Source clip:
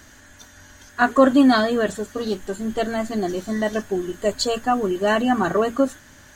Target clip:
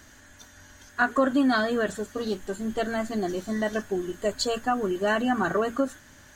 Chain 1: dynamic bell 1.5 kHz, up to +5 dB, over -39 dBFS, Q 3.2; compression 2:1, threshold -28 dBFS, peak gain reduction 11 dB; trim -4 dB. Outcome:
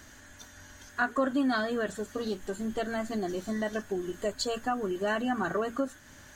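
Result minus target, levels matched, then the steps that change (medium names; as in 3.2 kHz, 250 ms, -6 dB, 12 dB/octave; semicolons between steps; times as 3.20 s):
compression: peak gain reduction +5.5 dB
change: compression 2:1, threshold -17.5 dBFS, peak gain reduction 5.5 dB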